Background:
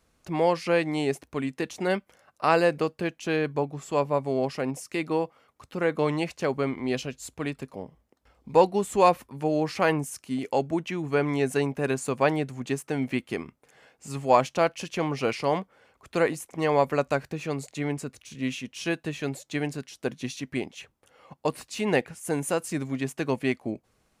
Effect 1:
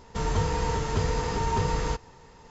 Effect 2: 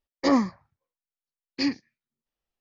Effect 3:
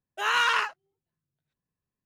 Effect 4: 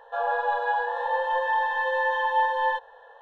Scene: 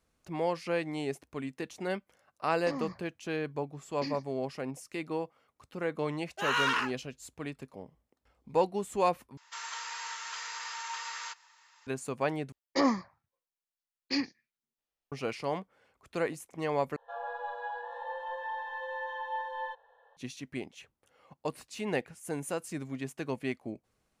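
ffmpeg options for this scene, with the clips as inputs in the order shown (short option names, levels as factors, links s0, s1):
-filter_complex "[2:a]asplit=2[s0][s1];[0:a]volume=0.398[s2];[s0]acompressor=threshold=0.0316:ratio=6:attack=3.2:release=140:knee=1:detection=peak[s3];[1:a]highpass=f=1200:w=0.5412,highpass=f=1200:w=1.3066[s4];[s1]lowshelf=f=230:g=-8[s5];[s2]asplit=4[s6][s7][s8][s9];[s6]atrim=end=9.374[s10];[s4]atrim=end=2.5,asetpts=PTS-STARTPTS,volume=0.794[s11];[s7]atrim=start=11.866:end=12.524[s12];[s5]atrim=end=2.6,asetpts=PTS-STARTPTS,volume=0.708[s13];[s8]atrim=start=15.116:end=16.964[s14];[4:a]atrim=end=3.21,asetpts=PTS-STARTPTS,volume=0.224[s15];[s9]atrim=start=20.166[s16];[s3]atrim=end=2.6,asetpts=PTS-STARTPTS,volume=0.596,afade=t=in:d=0.004:c=hsin,afade=t=out:st=2.596:d=0.004:c=hsin,adelay=2430[s17];[3:a]atrim=end=2.05,asetpts=PTS-STARTPTS,volume=0.562,afade=t=in:d=0.004:c=hsin,afade=t=out:st=2.046:d=0.004:c=hsin,adelay=6200[s18];[s10][s11]acrossfade=d=0.004:c1=hsin:c2=hsin[s19];[s19][s12]acrossfade=d=0.004:c1=hsin:c2=hsin[s20];[s20][s13]acrossfade=d=0.004:c1=hsin:c2=hsin[s21];[s21][s14]acrossfade=d=0.004:c1=hsin:c2=hsin[s22];[s22][s15]acrossfade=d=0.004:c1=hsin:c2=hsin[s23];[s23][s16]acrossfade=d=0.004:c1=hsin:c2=hsin[s24];[s24][s17][s18]amix=inputs=3:normalize=0"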